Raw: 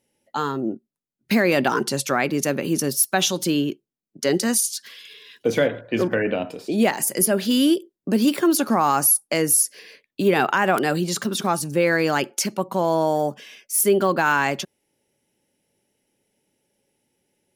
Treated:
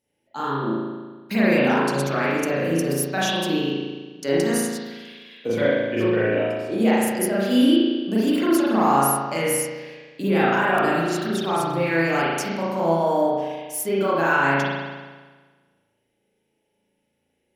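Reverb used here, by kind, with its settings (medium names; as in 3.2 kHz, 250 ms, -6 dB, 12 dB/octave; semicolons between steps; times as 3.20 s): spring tank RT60 1.4 s, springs 36 ms, chirp 30 ms, DRR -8.5 dB; trim -8.5 dB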